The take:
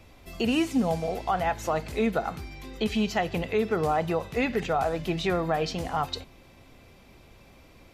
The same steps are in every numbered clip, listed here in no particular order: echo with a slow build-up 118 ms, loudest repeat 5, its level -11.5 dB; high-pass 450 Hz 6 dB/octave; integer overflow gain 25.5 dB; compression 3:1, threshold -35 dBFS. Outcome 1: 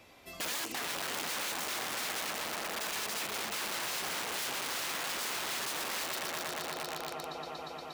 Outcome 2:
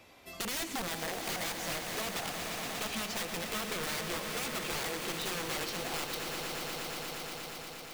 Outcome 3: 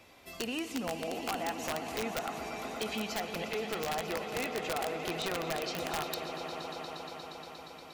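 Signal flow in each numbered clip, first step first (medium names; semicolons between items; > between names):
echo with a slow build-up > integer overflow > compression > high-pass; high-pass > integer overflow > echo with a slow build-up > compression; high-pass > compression > echo with a slow build-up > integer overflow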